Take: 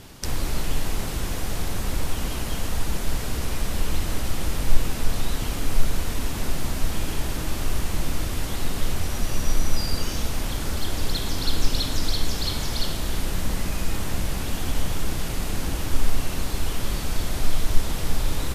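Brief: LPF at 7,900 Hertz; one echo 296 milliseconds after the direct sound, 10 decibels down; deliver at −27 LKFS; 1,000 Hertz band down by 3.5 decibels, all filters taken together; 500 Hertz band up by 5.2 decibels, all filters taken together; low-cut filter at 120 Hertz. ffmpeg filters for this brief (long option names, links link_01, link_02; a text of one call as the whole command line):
ffmpeg -i in.wav -af "highpass=120,lowpass=7900,equalizer=frequency=500:width_type=o:gain=8.5,equalizer=frequency=1000:width_type=o:gain=-8,aecho=1:1:296:0.316,volume=3.5dB" out.wav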